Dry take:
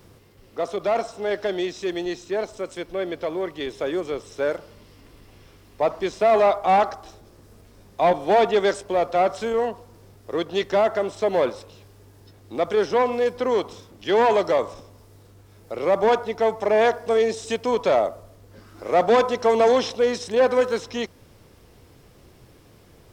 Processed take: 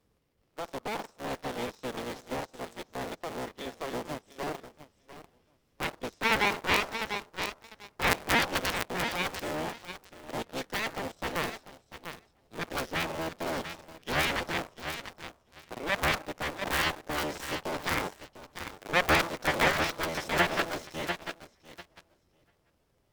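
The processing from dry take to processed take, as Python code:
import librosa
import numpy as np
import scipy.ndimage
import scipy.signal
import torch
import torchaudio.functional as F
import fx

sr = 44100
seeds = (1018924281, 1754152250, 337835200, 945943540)

p1 = fx.cycle_switch(x, sr, every=3, mode='inverted')
p2 = fx.cheby_harmonics(p1, sr, harmonics=(2, 3, 4), levels_db=(-18, -7, -23), full_scale_db=-6.5)
p3 = fx.echo_feedback(p2, sr, ms=694, feedback_pct=24, wet_db=-8.5)
p4 = fx.leveller(p3, sr, passes=2)
p5 = fx.quant_dither(p4, sr, seeds[0], bits=6, dither='none')
p6 = p4 + (p5 * 10.0 ** (-9.5 / 20.0))
p7 = fx.buffer_crackle(p6, sr, first_s=0.83, period_s=0.14, block=512, kind='repeat')
y = p7 * 10.0 ** (-8.0 / 20.0)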